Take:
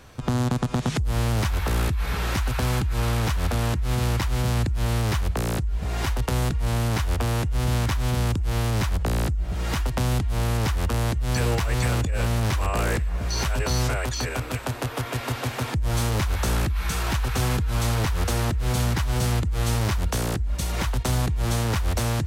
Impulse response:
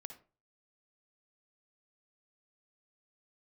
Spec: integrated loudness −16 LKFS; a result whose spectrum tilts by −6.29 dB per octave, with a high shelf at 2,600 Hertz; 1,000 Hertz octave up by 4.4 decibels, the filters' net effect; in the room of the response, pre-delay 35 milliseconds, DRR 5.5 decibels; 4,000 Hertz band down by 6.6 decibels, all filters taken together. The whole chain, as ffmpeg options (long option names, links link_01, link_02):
-filter_complex "[0:a]equalizer=frequency=1000:width_type=o:gain=6.5,highshelf=frequency=2600:gain=-4,equalizer=frequency=4000:width_type=o:gain=-5.5,asplit=2[link_01][link_02];[1:a]atrim=start_sample=2205,adelay=35[link_03];[link_02][link_03]afir=irnorm=-1:irlink=0,volume=-0.5dB[link_04];[link_01][link_04]amix=inputs=2:normalize=0,volume=7.5dB"